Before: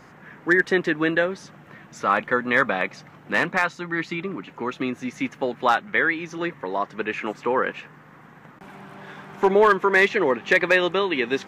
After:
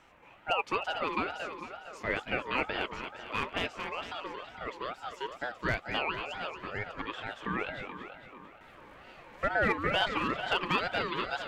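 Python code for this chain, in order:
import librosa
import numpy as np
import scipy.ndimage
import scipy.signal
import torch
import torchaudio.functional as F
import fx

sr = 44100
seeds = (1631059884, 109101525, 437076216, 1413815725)

y = fx.echo_split(x, sr, split_hz=420.0, low_ms=430, high_ms=227, feedback_pct=52, wet_db=-7)
y = fx.ring_lfo(y, sr, carrier_hz=900.0, swing_pct=25, hz=2.2)
y = y * librosa.db_to_amplitude(-9.0)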